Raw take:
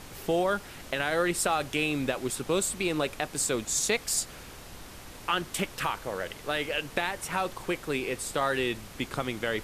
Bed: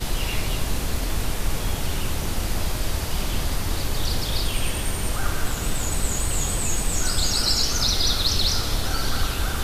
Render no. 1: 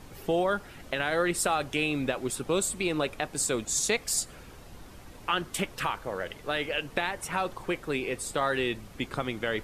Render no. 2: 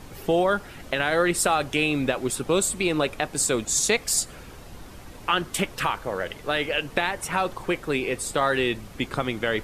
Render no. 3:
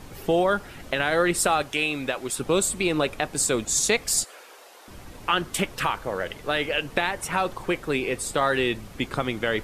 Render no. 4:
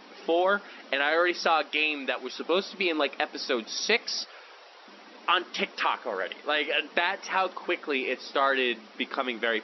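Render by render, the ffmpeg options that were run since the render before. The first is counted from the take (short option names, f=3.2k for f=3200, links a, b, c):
-af "afftdn=nr=8:nf=-46"
-af "volume=5dB"
-filter_complex "[0:a]asettb=1/sr,asplit=3[a][b][c];[a]atrim=end=1.624[d];[b]atrim=start=1.62:end=2.39,asetpts=PTS-STARTPTS,afade=t=in:d=0.004:c=qsin,afade=t=out:st=0.766:d=0.004:c=qsin,lowshelf=f=440:g=-9[e];[c]atrim=start=2.386[f];[d][e]acrossfade=d=0.004:c1=hsin:c2=qsin[g];[g][f]acrossfade=d=0.004:c1=qsin:c2=hsin,asettb=1/sr,asplit=3[h][i][j];[h]atrim=end=4.244[k];[i]atrim=start=4.24:end=4.88,asetpts=PTS-STARTPTS,afade=t=in:d=0.004:c=qsin,afade=t=out:st=0.636:d=0.004:c=qsin,highpass=f=450:w=0.5412,highpass=f=450:w=1.3066[l];[j]atrim=start=4.876[m];[k][l]acrossfade=d=0.004:c1=hsin:c2=qsin[n];[n][m]acrossfade=d=0.004:c1=qsin:c2=hsin"
-af "lowshelf=f=380:g=-8,afftfilt=real='re*between(b*sr/4096,190,5800)':imag='im*between(b*sr/4096,190,5800)':win_size=4096:overlap=0.75"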